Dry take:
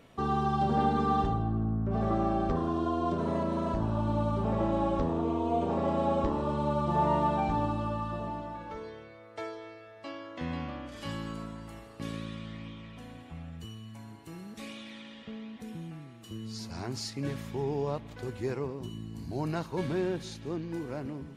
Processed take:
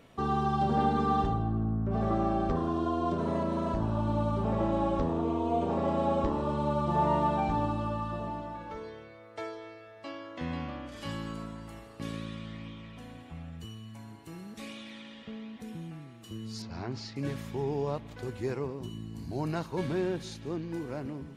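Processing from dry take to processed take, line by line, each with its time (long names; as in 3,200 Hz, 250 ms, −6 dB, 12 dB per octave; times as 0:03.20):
0:16.62–0:17.16: Bessel low-pass filter 3,700 Hz, order 4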